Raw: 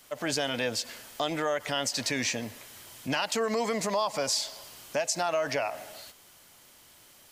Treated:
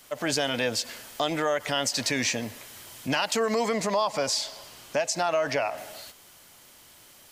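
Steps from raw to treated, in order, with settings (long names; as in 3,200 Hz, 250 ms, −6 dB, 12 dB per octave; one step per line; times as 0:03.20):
0:03.68–0:05.78: high-shelf EQ 8,000 Hz −7 dB
level +3 dB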